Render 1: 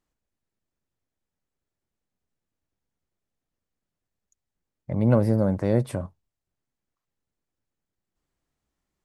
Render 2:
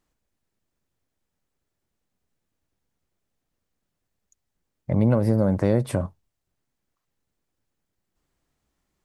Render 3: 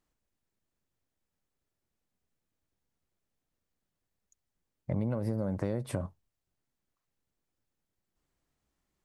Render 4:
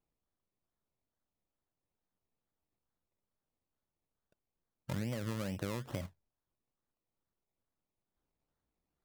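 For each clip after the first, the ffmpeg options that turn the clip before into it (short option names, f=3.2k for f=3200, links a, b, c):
-af "acompressor=threshold=-20dB:ratio=10,volume=5.5dB"
-af "acompressor=threshold=-22dB:ratio=6,volume=-5.5dB"
-af "acrusher=samples=23:mix=1:aa=0.000001:lfo=1:lforange=13.8:lforate=2.3,volume=-6dB"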